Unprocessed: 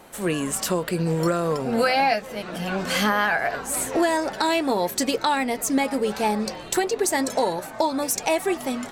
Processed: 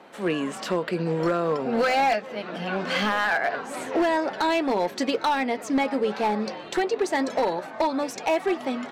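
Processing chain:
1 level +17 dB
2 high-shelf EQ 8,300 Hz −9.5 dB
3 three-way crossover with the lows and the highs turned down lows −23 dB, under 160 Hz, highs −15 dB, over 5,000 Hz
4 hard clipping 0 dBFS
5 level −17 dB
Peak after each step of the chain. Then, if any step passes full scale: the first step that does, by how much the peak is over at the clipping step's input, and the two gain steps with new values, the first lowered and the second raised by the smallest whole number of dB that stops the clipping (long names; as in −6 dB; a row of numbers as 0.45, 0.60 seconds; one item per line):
+9.0, +8.0, +9.0, 0.0, −17.0 dBFS
step 1, 9.0 dB
step 1 +8 dB, step 5 −8 dB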